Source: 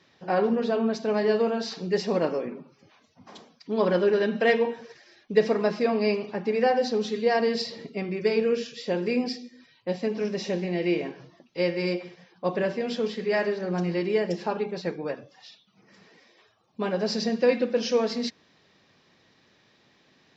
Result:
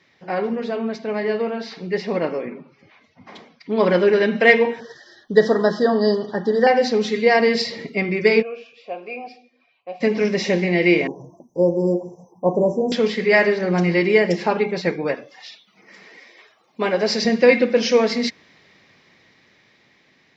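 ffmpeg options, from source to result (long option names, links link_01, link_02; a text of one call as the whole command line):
ffmpeg -i in.wav -filter_complex "[0:a]asettb=1/sr,asplit=3[link_01][link_02][link_03];[link_01]atrim=end=0.964[link_04];[link_02]atrim=start=0.96:end=3.8,asetpts=PTS-STARTPTS,afade=type=in:duration=0.004:curve=qsin,afade=type=out:start_time=2.836:duration=0.004:curve=qsin,lowpass=4300[link_05];[link_03]atrim=start=3.796[link_06];[link_04][link_05]acrossfade=duration=0.004:curve1=hsin:curve2=qsin[link_07];[link_07][link_06]acrossfade=duration=0.004:curve1=qsin:curve2=hsin,asettb=1/sr,asplit=3[link_08][link_09][link_10];[link_08]atrim=end=4.804[link_11];[link_09]atrim=start=4.8:end=6.67,asetpts=PTS-STARTPTS,afade=type=in:duration=0.004:curve=qsin,afade=type=out:start_time=1.866:duration=0.004:curve=qsin,asuperstop=centerf=2400:order=20:qfactor=2.2[link_12];[link_10]atrim=start=6.666[link_13];[link_11][link_12]acrossfade=duration=0.004:curve1=hsin:curve2=qsin[link_14];[link_14][link_13]acrossfade=duration=0.004:curve1=qsin:curve2=hsin,asplit=3[link_15][link_16][link_17];[link_15]afade=type=out:start_time=8.41:duration=0.02[link_18];[link_16]asplit=3[link_19][link_20][link_21];[link_19]bandpass=frequency=730:width_type=q:width=8,volume=0dB[link_22];[link_20]bandpass=frequency=1090:width_type=q:width=8,volume=-6dB[link_23];[link_21]bandpass=frequency=2440:width_type=q:width=8,volume=-9dB[link_24];[link_22][link_23][link_24]amix=inputs=3:normalize=0,afade=type=in:start_time=8.41:duration=0.02,afade=type=out:start_time=10:duration=0.02[link_25];[link_17]afade=type=in:start_time=10:duration=0.02[link_26];[link_18][link_25][link_26]amix=inputs=3:normalize=0,asettb=1/sr,asplit=3[link_27][link_28][link_29];[link_27]atrim=end=11.074[link_30];[link_28]atrim=start=11.07:end=12.92,asetpts=PTS-STARTPTS,afade=type=in:duration=0.004:curve=qsin,afade=type=out:start_time=1.846:duration=0.004:curve=qsin,asuperstop=centerf=2500:order=20:qfactor=0.51[link_31];[link_29]atrim=start=12.916[link_32];[link_30][link_31]acrossfade=duration=0.004:curve1=hsin:curve2=qsin[link_33];[link_33][link_32]acrossfade=duration=0.004:curve1=qsin:curve2=hsin,asettb=1/sr,asplit=3[link_34][link_35][link_36];[link_34]atrim=end=15.154[link_37];[link_35]atrim=start=15.15:end=17.25,asetpts=PTS-STARTPTS,afade=type=in:duration=0.004:curve=qsin,afade=type=out:start_time=2.096:duration=0.004:curve=qsin,highpass=260[link_38];[link_36]atrim=start=17.246[link_39];[link_37][link_38]acrossfade=duration=0.004:curve1=hsin:curve2=qsin[link_40];[link_40][link_39]acrossfade=duration=0.004:curve1=qsin:curve2=hsin,equalizer=frequency=2100:width=4.4:gain=10.5,dynaudnorm=framelen=780:gausssize=7:maxgain=11.5dB" out.wav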